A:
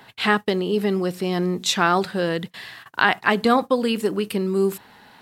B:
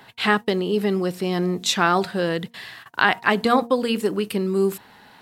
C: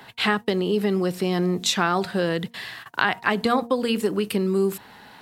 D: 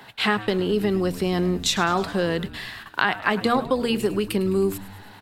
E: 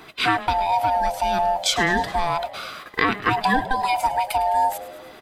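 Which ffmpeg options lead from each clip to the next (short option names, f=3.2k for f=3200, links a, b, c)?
-af "bandreject=f=234.8:t=h:w=4,bandreject=f=469.6:t=h:w=4,bandreject=f=704.4:t=h:w=4,bandreject=f=939.2:t=h:w=4"
-filter_complex "[0:a]acrossover=split=130[a][b];[b]acompressor=threshold=-24dB:ratio=2[c];[a][c]amix=inputs=2:normalize=0,volume=2.5dB"
-filter_complex "[0:a]asplit=7[a][b][c][d][e][f][g];[b]adelay=105,afreqshift=-98,volume=-16dB[h];[c]adelay=210,afreqshift=-196,volume=-20.6dB[i];[d]adelay=315,afreqshift=-294,volume=-25.2dB[j];[e]adelay=420,afreqshift=-392,volume=-29.7dB[k];[f]adelay=525,afreqshift=-490,volume=-34.3dB[l];[g]adelay=630,afreqshift=-588,volume=-38.9dB[m];[a][h][i][j][k][l][m]amix=inputs=7:normalize=0"
-af "afftfilt=real='real(if(lt(b,1008),b+24*(1-2*mod(floor(b/24),2)),b),0)':imag='imag(if(lt(b,1008),b+24*(1-2*mod(floor(b/24),2)),b),0)':win_size=2048:overlap=0.75,volume=1.5dB"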